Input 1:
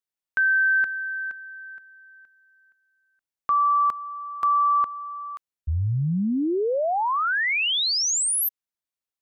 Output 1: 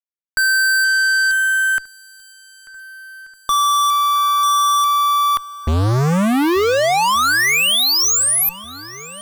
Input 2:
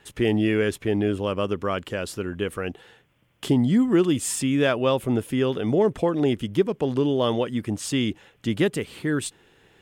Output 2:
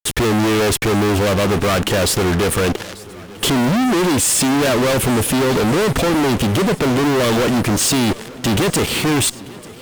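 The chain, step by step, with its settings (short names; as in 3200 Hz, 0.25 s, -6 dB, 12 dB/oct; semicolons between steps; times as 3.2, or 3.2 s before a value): fuzz box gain 48 dB, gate -46 dBFS; swung echo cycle 1.483 s, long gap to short 1.5:1, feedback 52%, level -21 dB; gain -1.5 dB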